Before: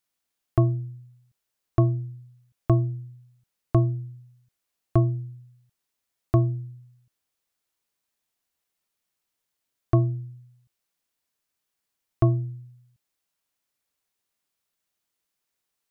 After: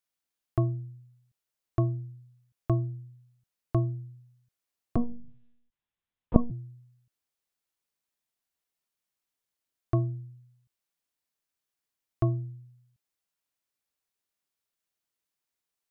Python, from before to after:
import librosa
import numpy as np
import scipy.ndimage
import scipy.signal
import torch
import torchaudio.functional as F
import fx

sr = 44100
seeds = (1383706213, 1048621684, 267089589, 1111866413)

y = fx.lpc_monotone(x, sr, seeds[0], pitch_hz=240.0, order=8, at=(4.96, 6.51))
y = F.gain(torch.from_numpy(y), -6.0).numpy()